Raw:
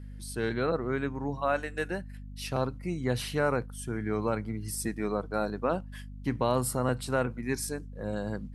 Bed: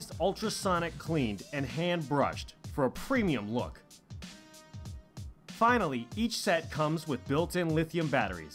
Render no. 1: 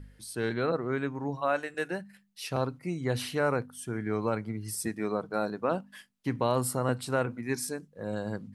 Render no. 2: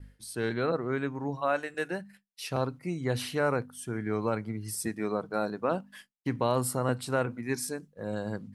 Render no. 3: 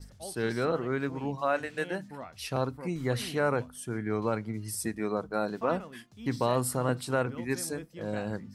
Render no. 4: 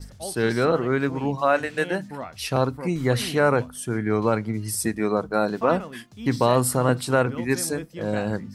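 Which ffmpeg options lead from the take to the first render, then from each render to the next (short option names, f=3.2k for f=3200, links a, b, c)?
-af "bandreject=f=50:t=h:w=4,bandreject=f=100:t=h:w=4,bandreject=f=150:t=h:w=4,bandreject=f=200:t=h:w=4,bandreject=f=250:t=h:w=4"
-af "agate=range=-33dB:threshold=-48dB:ratio=3:detection=peak"
-filter_complex "[1:a]volume=-14.5dB[a];[0:a][a]amix=inputs=2:normalize=0"
-af "volume=8dB"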